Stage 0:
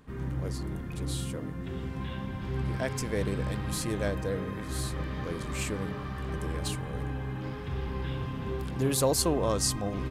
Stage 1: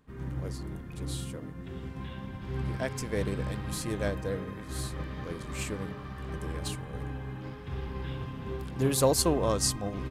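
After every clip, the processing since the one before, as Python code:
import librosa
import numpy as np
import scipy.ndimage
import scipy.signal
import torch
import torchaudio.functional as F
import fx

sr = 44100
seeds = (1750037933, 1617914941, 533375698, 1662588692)

y = fx.upward_expand(x, sr, threshold_db=-44.0, expansion=1.5)
y = F.gain(torch.from_numpy(y), 2.5).numpy()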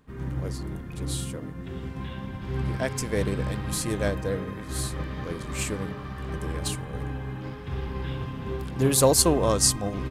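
y = fx.dynamic_eq(x, sr, hz=9100.0, q=0.77, threshold_db=-48.0, ratio=4.0, max_db=4)
y = F.gain(torch.from_numpy(y), 4.5).numpy()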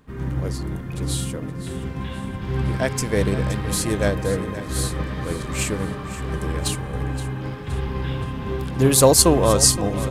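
y = fx.echo_feedback(x, sr, ms=521, feedback_pct=44, wet_db=-14.0)
y = F.gain(torch.from_numpy(y), 5.5).numpy()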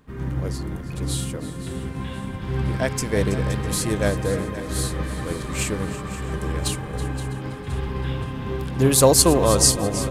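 y = fx.echo_feedback(x, sr, ms=326, feedback_pct=38, wet_db=-14.5)
y = F.gain(torch.from_numpy(y), -1.0).numpy()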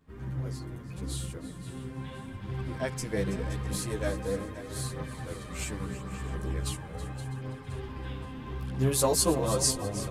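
y = fx.chorus_voices(x, sr, voices=2, hz=0.4, base_ms=12, depth_ms=4.4, mix_pct=55)
y = F.gain(torch.from_numpy(y), -7.0).numpy()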